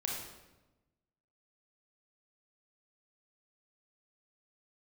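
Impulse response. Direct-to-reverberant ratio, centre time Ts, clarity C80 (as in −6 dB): −2.0 dB, 58 ms, 4.0 dB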